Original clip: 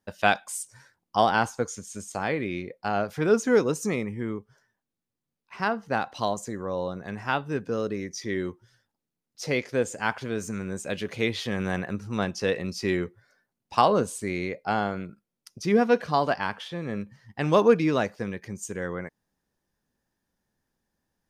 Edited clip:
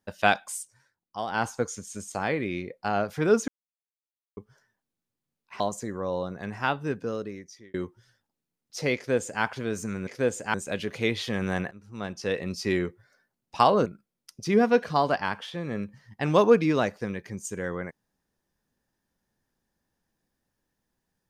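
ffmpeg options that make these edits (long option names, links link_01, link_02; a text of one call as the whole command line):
ffmpeg -i in.wav -filter_complex "[0:a]asplit=11[link_01][link_02][link_03][link_04][link_05][link_06][link_07][link_08][link_09][link_10][link_11];[link_01]atrim=end=0.74,asetpts=PTS-STARTPTS,afade=type=out:start_time=0.51:duration=0.23:silence=0.266073[link_12];[link_02]atrim=start=0.74:end=1.27,asetpts=PTS-STARTPTS,volume=-11.5dB[link_13];[link_03]atrim=start=1.27:end=3.48,asetpts=PTS-STARTPTS,afade=type=in:duration=0.23:silence=0.266073,afade=type=out:start_time=2.206:duration=0.004:curve=hsin[link_14];[link_04]atrim=start=3.48:end=4.37,asetpts=PTS-STARTPTS,volume=0[link_15];[link_05]atrim=start=4.37:end=5.602,asetpts=PTS-STARTPTS,afade=type=in:duration=0.004:curve=hsin[link_16];[link_06]atrim=start=6.248:end=8.39,asetpts=PTS-STARTPTS,afade=type=out:start_time=1.252:duration=0.89[link_17];[link_07]atrim=start=8.39:end=10.722,asetpts=PTS-STARTPTS,afade=type=in:duration=0.004:curve=hsin[link_18];[link_08]atrim=start=9.608:end=10.082[link_19];[link_09]atrim=start=10.718:end=11.89,asetpts=PTS-STARTPTS,afade=type=out:start_time=1.168:duration=0.004:curve=hsin:silence=0.0794328[link_20];[link_10]atrim=start=11.89:end=14.042,asetpts=PTS-STARTPTS,afade=type=in:duration=0.84:silence=0.0794328[link_21];[link_11]atrim=start=15.038[link_22];[link_12][link_13][link_14][link_15][link_16]concat=n=5:v=0:a=1[link_23];[link_17][link_18]concat=n=2:v=0:a=1[link_24];[link_23][link_24]acrossfade=duration=0.004:curve1=hsin:curve2=hsin[link_25];[link_25][link_19]acrossfade=duration=0.004:curve1=hsin:curve2=hsin[link_26];[link_20][link_21]concat=n=2:v=0:a=1[link_27];[link_26][link_27]acrossfade=duration=0.004:curve1=hsin:curve2=hsin[link_28];[link_28][link_22]acrossfade=duration=0.004:curve1=hsin:curve2=hsin" out.wav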